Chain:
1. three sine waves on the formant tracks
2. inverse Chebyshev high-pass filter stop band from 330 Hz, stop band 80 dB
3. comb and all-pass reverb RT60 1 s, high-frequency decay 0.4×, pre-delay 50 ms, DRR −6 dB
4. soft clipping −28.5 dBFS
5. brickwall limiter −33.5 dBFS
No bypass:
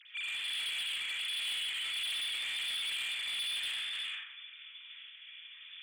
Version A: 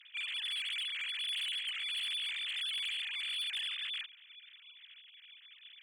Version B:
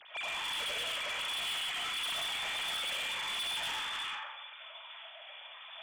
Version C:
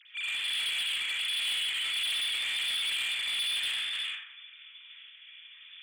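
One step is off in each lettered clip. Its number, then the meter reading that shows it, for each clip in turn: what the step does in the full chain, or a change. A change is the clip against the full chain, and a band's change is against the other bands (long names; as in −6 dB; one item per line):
3, change in momentary loudness spread +4 LU
2, 1 kHz band +13.5 dB
5, average gain reduction 3.5 dB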